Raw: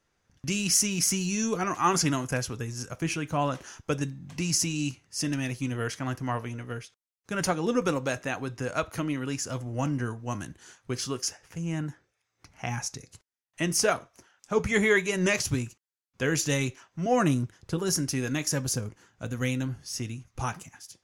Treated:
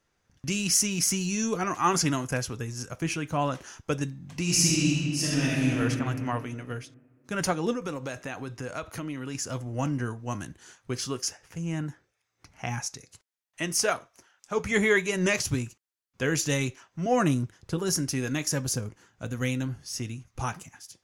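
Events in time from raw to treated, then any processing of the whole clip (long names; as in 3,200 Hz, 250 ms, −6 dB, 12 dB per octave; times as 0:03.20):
0:04.42–0:05.79: thrown reverb, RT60 2.3 s, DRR −5.5 dB
0:07.73–0:09.35: downward compressor 2.5 to 1, threshold −32 dBFS
0:12.80–0:14.67: low-shelf EQ 390 Hz −6.5 dB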